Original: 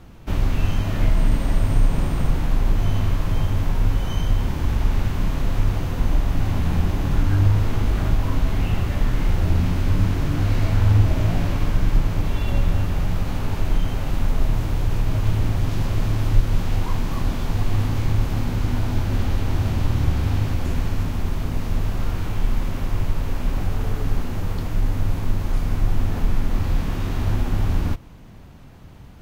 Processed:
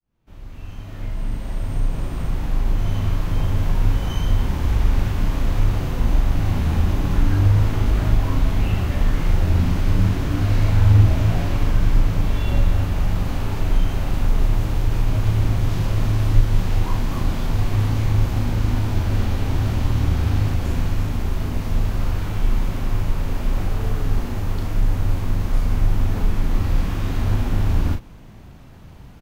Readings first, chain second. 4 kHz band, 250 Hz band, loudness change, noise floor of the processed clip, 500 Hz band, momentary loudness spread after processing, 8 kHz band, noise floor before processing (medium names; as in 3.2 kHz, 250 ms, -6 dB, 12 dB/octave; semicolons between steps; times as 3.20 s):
+0.5 dB, +0.5 dB, +1.5 dB, -40 dBFS, +0.5 dB, 6 LU, no reading, -40 dBFS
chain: fade-in on the opening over 3.92 s; doubling 38 ms -6 dB